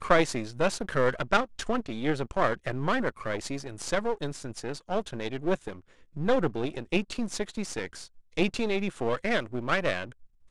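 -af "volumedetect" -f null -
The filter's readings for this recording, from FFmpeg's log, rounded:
mean_volume: -29.0 dB
max_volume: -5.6 dB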